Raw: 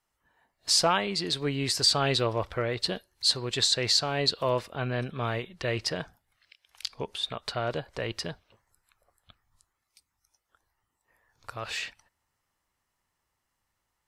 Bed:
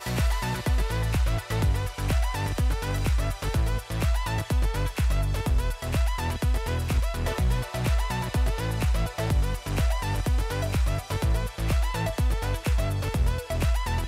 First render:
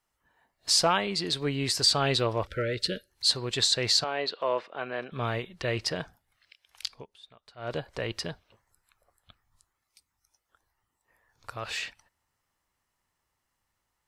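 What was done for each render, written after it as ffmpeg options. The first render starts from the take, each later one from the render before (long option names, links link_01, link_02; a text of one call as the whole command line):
ffmpeg -i in.wav -filter_complex "[0:a]asettb=1/sr,asplit=3[link_01][link_02][link_03];[link_01]atrim=end=2.474[link_04];[link_02]atrim=start=2.47:end=3.1,asetpts=PTS-STARTPTS,afade=type=in:duration=0.004:curve=qsin,afade=type=out:start_time=0.626:duration=0.004:curve=qsin,asuperstop=centerf=900:order=20:qfactor=1.3[link_05];[link_03]atrim=start=3.096[link_06];[link_04][link_05]acrossfade=duration=0.004:curve1=hsin:curve2=qsin[link_07];[link_07][link_06]acrossfade=duration=0.004:curve1=qsin:curve2=hsin,asettb=1/sr,asplit=3[link_08][link_09][link_10];[link_08]atrim=end=4.044[link_11];[link_09]atrim=start=4.04:end=5.12,asetpts=PTS-STARTPTS,afade=type=in:duration=0.004:curve=qsin,afade=type=out:start_time=1.076:duration=0.004:curve=qsin,highpass=390,lowpass=3000[link_12];[link_10]atrim=start=5.116[link_13];[link_11][link_12]acrossfade=duration=0.004:curve1=hsin:curve2=qsin[link_14];[link_14][link_13]acrossfade=duration=0.004:curve1=qsin:curve2=hsin,asplit=3[link_15][link_16][link_17];[link_15]atrim=end=7.06,asetpts=PTS-STARTPTS,afade=type=out:start_time=6.88:duration=0.18:silence=0.0944061[link_18];[link_16]atrim=start=7.06:end=7.57,asetpts=PTS-STARTPTS,volume=-20.5dB[link_19];[link_17]atrim=start=7.57,asetpts=PTS-STARTPTS,afade=type=in:duration=0.18:silence=0.0944061[link_20];[link_18][link_19][link_20]concat=n=3:v=0:a=1" out.wav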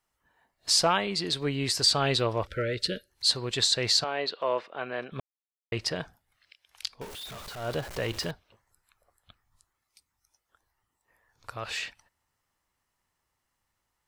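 ffmpeg -i in.wav -filter_complex "[0:a]asettb=1/sr,asplit=3[link_01][link_02][link_03];[link_01]atrim=end=7.014[link_04];[link_02]atrim=start=7.01:end=8.31,asetpts=PTS-STARTPTS,afade=type=in:duration=0.004:curve=qsin,afade=type=out:start_time=1.296:duration=0.004:curve=qsin,aeval=exprs='val(0)+0.5*0.015*sgn(val(0))':channel_layout=same[link_05];[link_03]atrim=start=8.306[link_06];[link_04][link_05]acrossfade=duration=0.004:curve1=hsin:curve2=qsin[link_07];[link_07][link_06]acrossfade=duration=0.004:curve1=qsin:curve2=hsin,asplit=3[link_08][link_09][link_10];[link_08]atrim=end=5.2,asetpts=PTS-STARTPTS,afade=type=out:start_time=5.196:duration=0.004:curve=hsin[link_11];[link_09]atrim=start=5.2:end=5.72,asetpts=PTS-STARTPTS,volume=0[link_12];[link_10]atrim=start=5.72,asetpts=PTS-STARTPTS,afade=type=in:duration=0.004:curve=hsin[link_13];[link_11][link_12][link_13]concat=n=3:v=0:a=1" out.wav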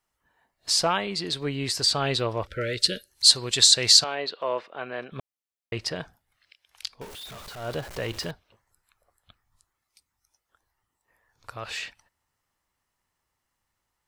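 ffmpeg -i in.wav -filter_complex "[0:a]asettb=1/sr,asplit=3[link_01][link_02][link_03];[link_01]atrim=end=2.614[link_04];[link_02]atrim=start=2.61:end=4.15,asetpts=PTS-STARTPTS,afade=type=in:duration=0.004:curve=qsin,afade=type=out:start_time=1.536:duration=0.004:curve=qsin,equalizer=frequency=8900:width_type=o:width=2.4:gain=12[link_05];[link_03]atrim=start=4.146[link_06];[link_04][link_05]acrossfade=duration=0.004:curve1=hsin:curve2=qsin[link_07];[link_07][link_06]acrossfade=duration=0.004:curve1=qsin:curve2=hsin" out.wav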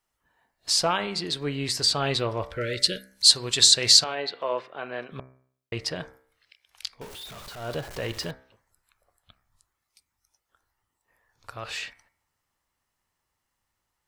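ffmpeg -i in.wav -af "bandreject=frequency=64.62:width_type=h:width=4,bandreject=frequency=129.24:width_type=h:width=4,bandreject=frequency=193.86:width_type=h:width=4,bandreject=frequency=258.48:width_type=h:width=4,bandreject=frequency=323.1:width_type=h:width=4,bandreject=frequency=387.72:width_type=h:width=4,bandreject=frequency=452.34:width_type=h:width=4,bandreject=frequency=516.96:width_type=h:width=4,bandreject=frequency=581.58:width_type=h:width=4,bandreject=frequency=646.2:width_type=h:width=4,bandreject=frequency=710.82:width_type=h:width=4,bandreject=frequency=775.44:width_type=h:width=4,bandreject=frequency=840.06:width_type=h:width=4,bandreject=frequency=904.68:width_type=h:width=4,bandreject=frequency=969.3:width_type=h:width=4,bandreject=frequency=1033.92:width_type=h:width=4,bandreject=frequency=1098.54:width_type=h:width=4,bandreject=frequency=1163.16:width_type=h:width=4,bandreject=frequency=1227.78:width_type=h:width=4,bandreject=frequency=1292.4:width_type=h:width=4,bandreject=frequency=1357.02:width_type=h:width=4,bandreject=frequency=1421.64:width_type=h:width=4,bandreject=frequency=1486.26:width_type=h:width=4,bandreject=frequency=1550.88:width_type=h:width=4,bandreject=frequency=1615.5:width_type=h:width=4,bandreject=frequency=1680.12:width_type=h:width=4,bandreject=frequency=1744.74:width_type=h:width=4,bandreject=frequency=1809.36:width_type=h:width=4,bandreject=frequency=1873.98:width_type=h:width=4,bandreject=frequency=1938.6:width_type=h:width=4,bandreject=frequency=2003.22:width_type=h:width=4,bandreject=frequency=2067.84:width_type=h:width=4,bandreject=frequency=2132.46:width_type=h:width=4,bandreject=frequency=2197.08:width_type=h:width=4,bandreject=frequency=2261.7:width_type=h:width=4,bandreject=frequency=2326.32:width_type=h:width=4,bandreject=frequency=2390.94:width_type=h:width=4" out.wav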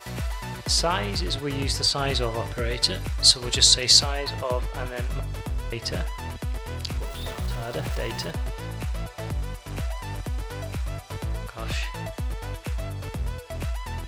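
ffmpeg -i in.wav -i bed.wav -filter_complex "[1:a]volume=-5.5dB[link_01];[0:a][link_01]amix=inputs=2:normalize=0" out.wav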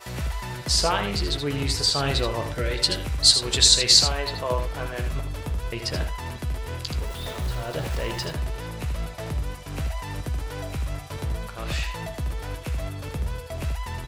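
ffmpeg -i in.wav -filter_complex "[0:a]asplit=2[link_01][link_02];[link_02]adelay=14,volume=-11dB[link_03];[link_01][link_03]amix=inputs=2:normalize=0,aecho=1:1:79:0.398" out.wav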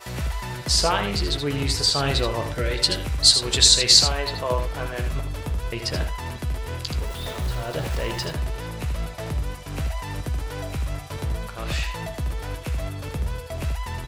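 ffmpeg -i in.wav -af "volume=1.5dB,alimiter=limit=-2dB:level=0:latency=1" out.wav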